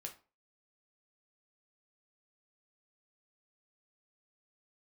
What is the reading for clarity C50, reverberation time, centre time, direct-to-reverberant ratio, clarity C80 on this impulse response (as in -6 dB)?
12.5 dB, 0.35 s, 11 ms, 2.5 dB, 19.0 dB